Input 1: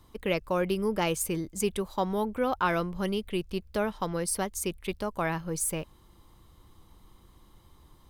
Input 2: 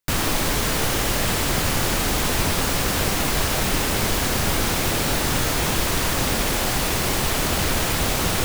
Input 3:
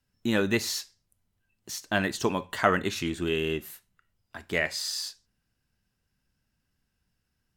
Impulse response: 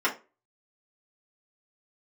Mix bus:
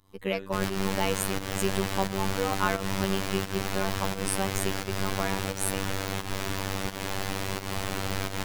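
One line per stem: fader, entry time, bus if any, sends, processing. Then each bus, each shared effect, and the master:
+1.0 dB, 0.00 s, no send, no echo send, dry
-2.5 dB, 0.45 s, no send, echo send -5 dB, high shelf 5400 Hz -8 dB; auto duck -9 dB, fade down 0.80 s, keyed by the first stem
-16.5 dB, 0.00 s, no send, echo send -11.5 dB, dry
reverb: off
echo: echo 82 ms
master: pump 87 bpm, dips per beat 1, -12 dB, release 0.196 s; robotiser 96.8 Hz

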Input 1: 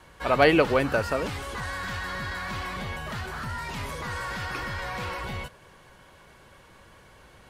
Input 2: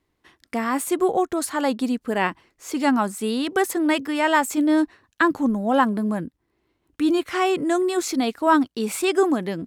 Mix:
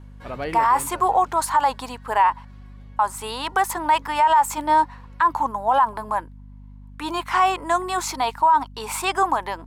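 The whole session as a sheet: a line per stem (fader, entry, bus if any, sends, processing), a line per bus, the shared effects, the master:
-9.0 dB, 0.00 s, no send, auto duck -17 dB, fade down 1.60 s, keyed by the second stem
+0.5 dB, 0.00 s, muted 2.45–2.99, no send, gate -48 dBFS, range -6 dB; resonant high-pass 930 Hz, resonance Q 8.7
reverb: off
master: low shelf 400 Hz +8 dB; hum 50 Hz, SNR 28 dB; limiter -9.5 dBFS, peak gain reduction 17.5 dB

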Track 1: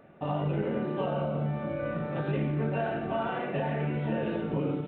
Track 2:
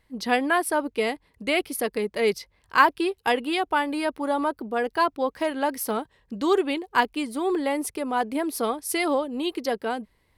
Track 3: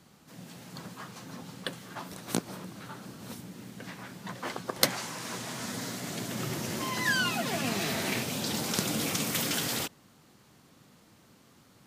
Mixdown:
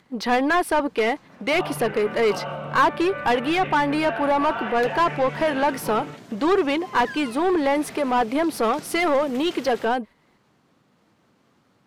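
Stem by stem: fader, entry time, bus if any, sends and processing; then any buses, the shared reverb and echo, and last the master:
+2.0 dB, 1.30 s, no send, bell 380 Hz -14.5 dB 2.7 oct
+1.0 dB, 0.00 s, no send, gate -45 dBFS, range -7 dB
-18.0 dB, 0.00 s, no send, low shelf 330 Hz +9.5 dB; upward compressor, threshold -41 dBFS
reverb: off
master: overdrive pedal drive 19 dB, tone 1700 Hz, clips at -12 dBFS

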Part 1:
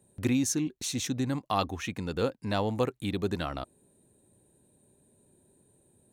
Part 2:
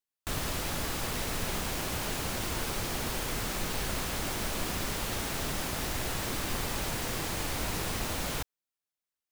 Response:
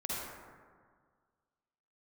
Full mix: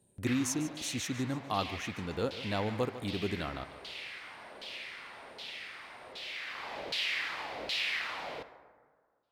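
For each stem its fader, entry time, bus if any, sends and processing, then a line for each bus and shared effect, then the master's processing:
-4.5 dB, 0.00 s, no send, echo send -14 dB, dry
+1.0 dB, 0.00 s, send -14.5 dB, no echo send, band shelf 3100 Hz +10.5 dB; LFO band-pass saw down 1.3 Hz 450–3900 Hz; auto duck -16 dB, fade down 0.90 s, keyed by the first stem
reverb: on, RT60 1.8 s, pre-delay 43 ms
echo: feedback echo 0.148 s, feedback 39%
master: dry

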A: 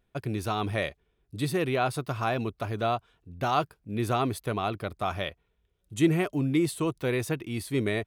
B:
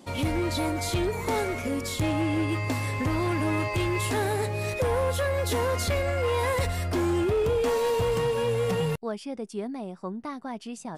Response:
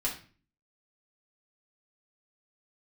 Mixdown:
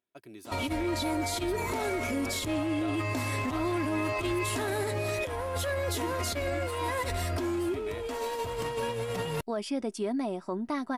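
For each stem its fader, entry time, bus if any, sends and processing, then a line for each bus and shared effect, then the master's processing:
-14.0 dB, 0.00 s, no send, HPF 180 Hz 12 dB/oct; high shelf 7700 Hz +6 dB
+1.5 dB, 0.45 s, no send, negative-ratio compressor -28 dBFS, ratio -0.5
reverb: off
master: low shelf 160 Hz -4.5 dB; comb 3.1 ms, depth 42%; limiter -23 dBFS, peak gain reduction 7.5 dB

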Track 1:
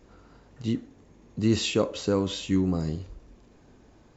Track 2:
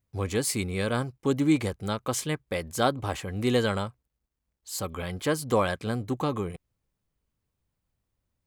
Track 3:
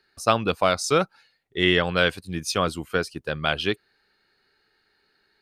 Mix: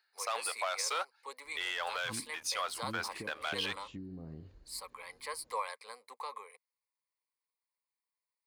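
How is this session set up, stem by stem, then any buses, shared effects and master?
-14.5 dB, 1.45 s, no bus, no send, treble ducked by the level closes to 430 Hz, closed at -19.5 dBFS; compressor, threshold -27 dBFS, peak gain reduction 9 dB
-10.5 dB, 0.00 s, bus A, no send, ripple EQ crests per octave 0.92, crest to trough 14 dB
-3.5 dB, 0.00 s, bus A, no send, sample leveller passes 2; auto duck -7 dB, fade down 0.20 s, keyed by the second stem
bus A: 0.0 dB, HPF 690 Hz 24 dB/oct; limiter -24.5 dBFS, peak gain reduction 10.5 dB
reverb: off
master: dry

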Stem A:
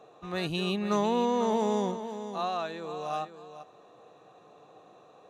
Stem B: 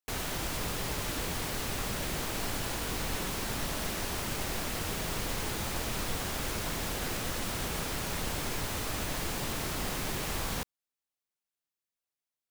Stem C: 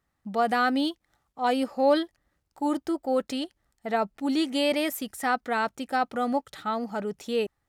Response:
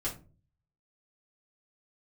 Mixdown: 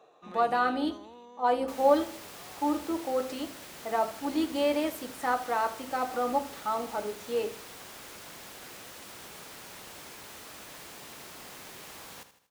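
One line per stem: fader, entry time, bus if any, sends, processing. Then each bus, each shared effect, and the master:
-2.5 dB, 0.00 s, no send, no echo send, limiter -26.5 dBFS, peak gain reduction 10 dB; auto duck -15 dB, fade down 1.65 s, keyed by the third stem
-10.0 dB, 1.60 s, no send, echo send -11.5 dB, dry
-12.0 dB, 0.00 s, send -6 dB, echo send -13.5 dB, octaver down 2 oct, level -3 dB; ten-band EQ 125 Hz -11 dB, 250 Hz +7 dB, 500 Hz +6 dB, 1000 Hz +10 dB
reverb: on, RT60 0.35 s, pre-delay 3 ms
echo: feedback echo 79 ms, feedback 45%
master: HPF 390 Hz 6 dB/oct

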